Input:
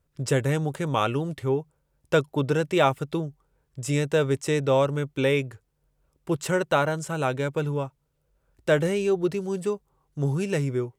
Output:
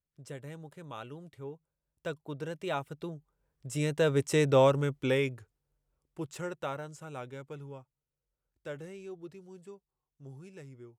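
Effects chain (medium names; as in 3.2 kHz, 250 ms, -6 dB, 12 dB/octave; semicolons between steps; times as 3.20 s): Doppler pass-by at 4.52 s, 12 m/s, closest 5.6 m; trim -1 dB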